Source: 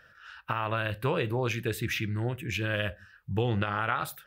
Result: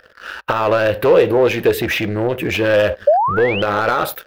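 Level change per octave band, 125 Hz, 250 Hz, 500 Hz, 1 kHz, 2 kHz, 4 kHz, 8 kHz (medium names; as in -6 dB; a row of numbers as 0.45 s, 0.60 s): +4.5 dB, +12.5 dB, +19.5 dB, +14.5 dB, +12.0 dB, +11.5 dB, +9.0 dB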